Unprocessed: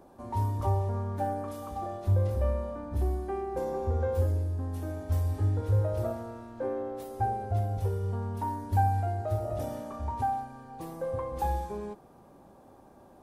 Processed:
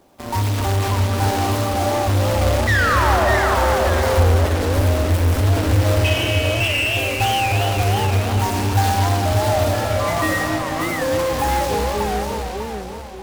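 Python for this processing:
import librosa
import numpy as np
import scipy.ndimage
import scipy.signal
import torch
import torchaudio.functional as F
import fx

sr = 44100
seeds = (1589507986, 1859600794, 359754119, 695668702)

p1 = fx.block_float(x, sr, bits=3)
p2 = fx.spec_paint(p1, sr, seeds[0], shape='fall', start_s=2.67, length_s=0.62, low_hz=560.0, high_hz=2000.0, level_db=-26.0)
p3 = fx.low_shelf(p2, sr, hz=140.0, db=10.0, at=(4.09, 4.77))
p4 = fx.freq_invert(p3, sr, carrier_hz=3200, at=(6.04, 6.97))
p5 = fx.ring_mod(p4, sr, carrier_hz=1100.0, at=(9.73, 10.41))
p6 = fx.rev_freeverb(p5, sr, rt60_s=2.8, hf_ratio=0.75, predelay_ms=35, drr_db=0.0)
p7 = fx.fuzz(p6, sr, gain_db=36.0, gate_db=-40.0)
p8 = p6 + F.gain(torch.from_numpy(p7), -8.0).numpy()
y = fx.echo_warbled(p8, sr, ms=591, feedback_pct=37, rate_hz=2.8, cents=185, wet_db=-4.5)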